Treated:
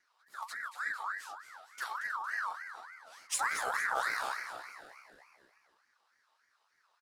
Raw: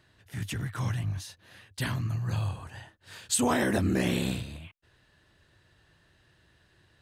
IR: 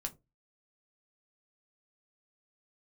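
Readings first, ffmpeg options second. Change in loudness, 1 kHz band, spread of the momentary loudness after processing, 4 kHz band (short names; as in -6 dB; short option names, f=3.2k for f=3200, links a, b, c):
-6.0 dB, +2.0 dB, 19 LU, -8.0 dB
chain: -filter_complex "[0:a]asuperstop=centerf=1100:order=20:qfactor=0.76,aeval=exprs='0.2*(cos(1*acos(clip(val(0)/0.2,-1,1)))-cos(1*PI/2))+0.00398*(cos(6*acos(clip(val(0)/0.2,-1,1)))-cos(6*PI/2))+0.00794*(cos(7*acos(clip(val(0)/0.2,-1,1)))-cos(7*PI/2))':c=same,flanger=delay=5.3:depth=6.9:regen=-39:speed=1.5:shape=triangular,asplit=7[a][b][c][d][e][f][g];[b]adelay=229,afreqshift=79,volume=-10dB[h];[c]adelay=458,afreqshift=158,volume=-15.5dB[i];[d]adelay=687,afreqshift=237,volume=-21dB[j];[e]adelay=916,afreqshift=316,volume=-26.5dB[k];[f]adelay=1145,afreqshift=395,volume=-32.1dB[l];[g]adelay=1374,afreqshift=474,volume=-37.6dB[m];[a][h][i][j][k][l][m]amix=inputs=7:normalize=0,aeval=exprs='val(0)*sin(2*PI*1400*n/s+1400*0.3/3.4*sin(2*PI*3.4*n/s))':c=same"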